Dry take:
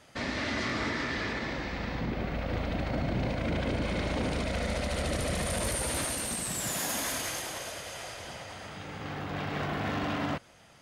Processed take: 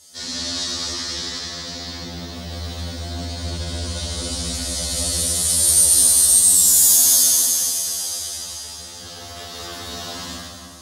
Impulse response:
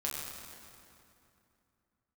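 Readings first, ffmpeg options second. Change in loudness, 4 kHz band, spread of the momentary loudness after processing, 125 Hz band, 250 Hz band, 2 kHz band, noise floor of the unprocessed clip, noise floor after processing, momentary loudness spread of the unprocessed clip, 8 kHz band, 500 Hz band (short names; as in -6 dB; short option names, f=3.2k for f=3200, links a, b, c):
+17.5 dB, +14.5 dB, 21 LU, +3.0 dB, -1.0 dB, -2.5 dB, -56 dBFS, -37 dBFS, 9 LU, +22.0 dB, -1.5 dB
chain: -filter_complex "[0:a]aexciter=amount=14:drive=3.6:freq=3.6k[a];[1:a]atrim=start_sample=2205[b];[a][b]afir=irnorm=-1:irlink=0,afftfilt=real='re*2*eq(mod(b,4),0)':imag='im*2*eq(mod(b,4),0)':win_size=2048:overlap=0.75,volume=-3dB"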